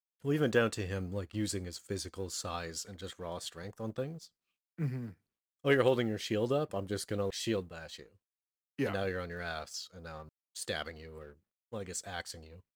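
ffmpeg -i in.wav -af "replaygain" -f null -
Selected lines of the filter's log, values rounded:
track_gain = +15.0 dB
track_peak = 0.142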